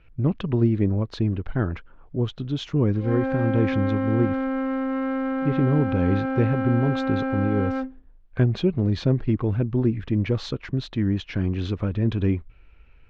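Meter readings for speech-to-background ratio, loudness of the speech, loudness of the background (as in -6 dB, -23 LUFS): 2.0 dB, -24.5 LUFS, -26.5 LUFS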